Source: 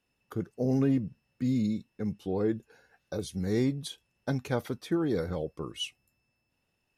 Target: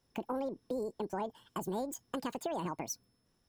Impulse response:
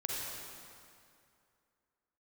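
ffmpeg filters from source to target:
-af "lowshelf=f=92:g=11.5,acompressor=threshold=-34dB:ratio=5,asetrate=88200,aresample=44100"

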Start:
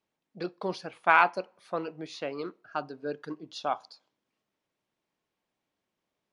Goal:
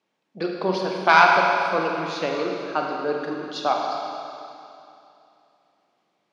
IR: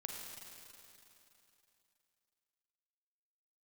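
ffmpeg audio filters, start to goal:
-filter_complex "[0:a]aeval=exprs='0.422*sin(PI/2*1.58*val(0)/0.422)':c=same,highpass=170,lowpass=6.1k[a];[1:a]atrim=start_sample=2205,asetrate=48510,aresample=44100[b];[a][b]afir=irnorm=-1:irlink=0,volume=5.5dB"

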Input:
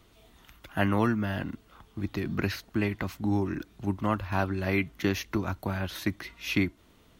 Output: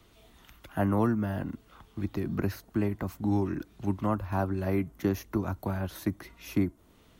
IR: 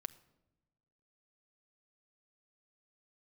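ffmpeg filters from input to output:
-filter_complex "[0:a]acrossover=split=190|1300|6700[a][b][c][d];[c]acompressor=threshold=-52dB:ratio=6[e];[d]aphaser=in_gain=1:out_gain=1:delay=1.9:decay=0.31:speed=0.94:type=triangular[f];[a][b][e][f]amix=inputs=4:normalize=0"

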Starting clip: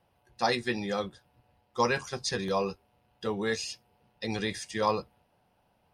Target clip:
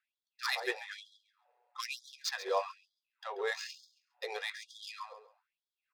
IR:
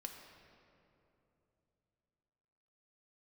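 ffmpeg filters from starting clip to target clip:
-af "bandreject=f=3k:w=8.8,adynamicsmooth=sensitivity=5.5:basefreq=2.5k,aecho=1:1:136|272|408:0.224|0.0493|0.0108,afftfilt=real='re*gte(b*sr/1024,370*pow(3300/370,0.5+0.5*sin(2*PI*1.1*pts/sr)))':imag='im*gte(b*sr/1024,370*pow(3300/370,0.5+0.5*sin(2*PI*1.1*pts/sr)))':win_size=1024:overlap=0.75,volume=-1.5dB"

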